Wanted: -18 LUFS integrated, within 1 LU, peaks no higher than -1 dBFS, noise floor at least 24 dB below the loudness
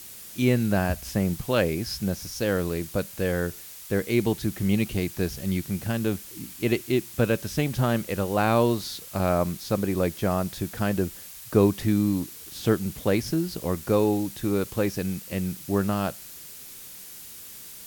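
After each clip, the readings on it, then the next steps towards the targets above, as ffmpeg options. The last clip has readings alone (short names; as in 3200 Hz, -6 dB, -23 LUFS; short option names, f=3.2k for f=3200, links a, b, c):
noise floor -43 dBFS; noise floor target -50 dBFS; loudness -26.0 LUFS; peak -7.0 dBFS; loudness target -18.0 LUFS
-> -af "afftdn=nr=7:nf=-43"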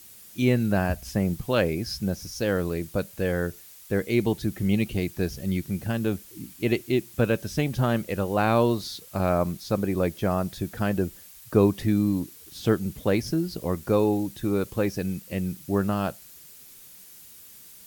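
noise floor -48 dBFS; noise floor target -51 dBFS
-> -af "afftdn=nr=6:nf=-48"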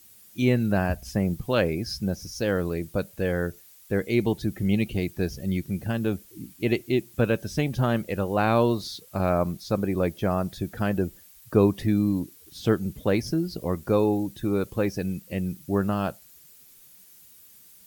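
noise floor -53 dBFS; loudness -26.5 LUFS; peak -7.0 dBFS; loudness target -18.0 LUFS
-> -af "volume=8.5dB,alimiter=limit=-1dB:level=0:latency=1"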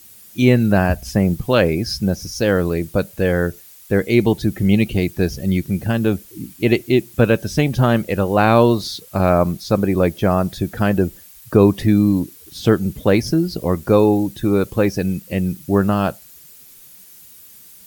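loudness -18.0 LUFS; peak -1.0 dBFS; noise floor -44 dBFS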